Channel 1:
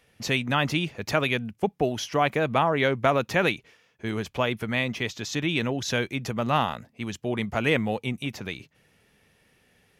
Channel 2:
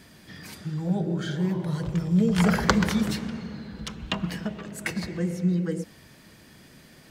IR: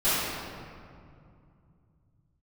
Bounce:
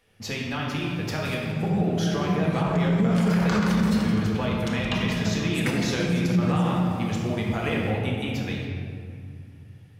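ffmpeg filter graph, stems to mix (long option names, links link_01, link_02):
-filter_complex "[0:a]acompressor=threshold=-26dB:ratio=6,equalizer=frequency=92:width_type=o:width=0.35:gain=15,volume=-5.5dB,asplit=2[link_01][link_02];[link_02]volume=-10.5dB[link_03];[1:a]adelay=800,volume=-4.5dB,asplit=3[link_04][link_05][link_06];[link_05]volume=-13dB[link_07];[link_06]volume=-10.5dB[link_08];[2:a]atrim=start_sample=2205[link_09];[link_03][link_07]amix=inputs=2:normalize=0[link_10];[link_10][link_09]afir=irnorm=-1:irlink=0[link_11];[link_08]aecho=0:1:170|340|510|680|850|1020|1190|1360|1530:1|0.59|0.348|0.205|0.121|0.0715|0.0422|0.0249|0.0147[link_12];[link_01][link_04][link_11][link_12]amix=inputs=4:normalize=0,dynaudnorm=framelen=710:gausssize=7:maxgain=3dB,alimiter=limit=-14dB:level=0:latency=1:release=49"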